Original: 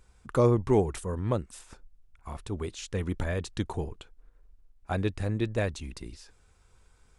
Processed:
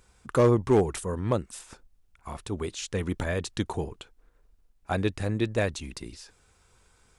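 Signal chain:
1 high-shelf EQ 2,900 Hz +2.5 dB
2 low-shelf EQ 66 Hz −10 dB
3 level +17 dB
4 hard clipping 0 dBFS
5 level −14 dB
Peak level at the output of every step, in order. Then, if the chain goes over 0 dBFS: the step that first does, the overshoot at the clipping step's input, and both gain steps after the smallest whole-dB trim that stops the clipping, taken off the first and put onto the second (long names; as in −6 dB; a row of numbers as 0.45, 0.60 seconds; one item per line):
−11.5, −12.0, +5.0, 0.0, −14.0 dBFS
step 3, 5.0 dB
step 3 +12 dB, step 5 −9 dB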